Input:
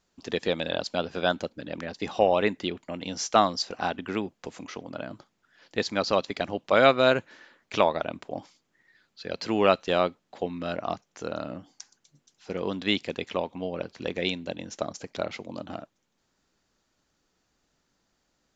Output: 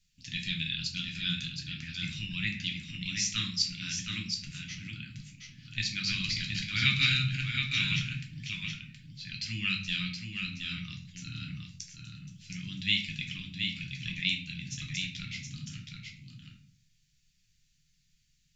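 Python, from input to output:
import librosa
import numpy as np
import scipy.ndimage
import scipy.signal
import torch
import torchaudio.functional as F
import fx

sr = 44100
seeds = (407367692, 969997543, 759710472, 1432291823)

y = fx.reverse_delay(x, sr, ms=152, wet_db=-0.5, at=(5.89, 8.01))
y = scipy.signal.sosfilt(scipy.signal.ellip(3, 1.0, 70, [160.0, 2300.0], 'bandstop', fs=sr, output='sos'), y)
y = y + 10.0 ** (-5.5 / 20.0) * np.pad(y, (int(721 * sr / 1000.0), 0))[:len(y)]
y = fx.room_shoebox(y, sr, seeds[0], volume_m3=48.0, walls='mixed', distance_m=0.62)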